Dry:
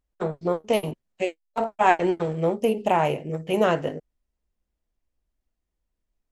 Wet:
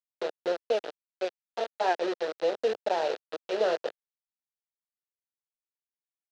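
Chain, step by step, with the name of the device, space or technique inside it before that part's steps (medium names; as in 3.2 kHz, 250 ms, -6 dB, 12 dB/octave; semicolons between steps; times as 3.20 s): hand-held game console (bit crusher 4-bit; cabinet simulation 420–5500 Hz, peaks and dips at 1.1 kHz -4 dB, 2.2 kHz -8 dB, 4 kHz +8 dB); ten-band graphic EQ 125 Hz -10 dB, 250 Hz -3 dB, 500 Hz +6 dB, 1 kHz -7 dB, 4 kHz -9 dB, 8 kHz -7 dB; trim -4.5 dB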